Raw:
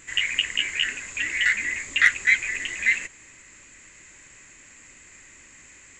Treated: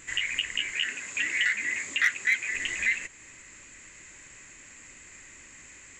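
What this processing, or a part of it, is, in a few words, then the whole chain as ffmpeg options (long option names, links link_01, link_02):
clipper into limiter: -filter_complex "[0:a]asoftclip=type=hard:threshold=-9dB,alimiter=limit=-15dB:level=0:latency=1:release=384,asettb=1/sr,asplit=3[link_01][link_02][link_03];[link_01]atrim=end=0.724[link_04];[link_02]atrim=start=0.72:end=2.55,asetpts=PTS-STARTPTS,afade=type=in:duration=0.004:curve=qsin,afade=type=out:start_time=1.826:duration=0.004:curve=qsin,highpass=140[link_05];[link_03]atrim=start=2.546[link_06];[link_04][link_05]acrossfade=duration=0.004:curve1=hsin:curve2=qsin[link_07];[link_07][link_06]acrossfade=duration=0.004:curve1=qsin:curve2=hsin"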